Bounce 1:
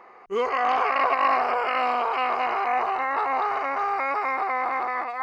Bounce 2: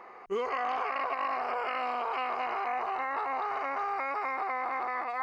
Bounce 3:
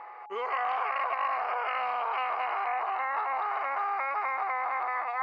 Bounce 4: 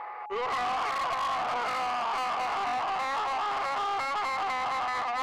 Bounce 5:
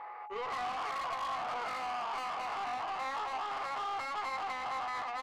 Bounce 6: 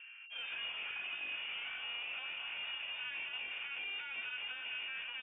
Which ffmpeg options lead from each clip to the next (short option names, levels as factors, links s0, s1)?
-af "acompressor=threshold=0.0355:ratio=6"
-filter_complex "[0:a]acrossover=split=520 3600:gain=0.0708 1 0.126[s0][s1][s2];[s0][s1][s2]amix=inputs=3:normalize=0,aeval=exprs='val(0)+0.00398*sin(2*PI*840*n/s)':c=same,volume=1.41"
-af "asoftclip=type=tanh:threshold=0.0237,volume=2"
-filter_complex "[0:a]asplit=2[s0][s1];[s1]adelay=19,volume=0.335[s2];[s0][s2]amix=inputs=2:normalize=0,volume=0.422"
-filter_complex "[0:a]asplit=2[s0][s1];[s1]acrusher=bits=5:mix=0:aa=0.000001,volume=0.299[s2];[s0][s2]amix=inputs=2:normalize=0,lowpass=f=3100:t=q:w=0.5098,lowpass=f=3100:t=q:w=0.6013,lowpass=f=3100:t=q:w=0.9,lowpass=f=3100:t=q:w=2.563,afreqshift=-3600,volume=0.398"